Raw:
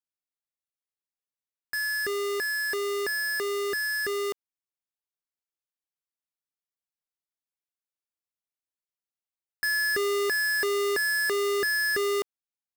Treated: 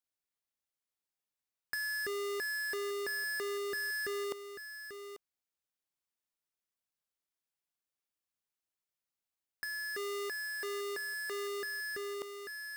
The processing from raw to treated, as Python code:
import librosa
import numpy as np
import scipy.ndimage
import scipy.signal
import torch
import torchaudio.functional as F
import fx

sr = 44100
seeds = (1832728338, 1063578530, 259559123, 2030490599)

y = fx.low_shelf(x, sr, hz=200.0, db=-11.0, at=(9.87, 11.89))
y = y + 10.0 ** (-18.5 / 20.0) * np.pad(y, (int(841 * sr / 1000.0), 0))[:len(y)]
y = fx.over_compress(y, sr, threshold_db=-33.0, ratio=-1.0)
y = y * 10.0 ** (-4.5 / 20.0)